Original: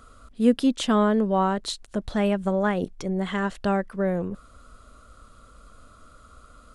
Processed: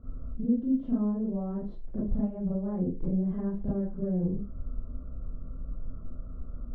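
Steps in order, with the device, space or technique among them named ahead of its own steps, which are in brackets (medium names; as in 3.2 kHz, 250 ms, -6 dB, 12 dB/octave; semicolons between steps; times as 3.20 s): television next door (compression 5:1, threshold -35 dBFS, peak gain reduction 19.5 dB; low-pass 310 Hz 12 dB/octave; reverberation RT60 0.30 s, pre-delay 30 ms, DRR -8.5 dB); trim +1.5 dB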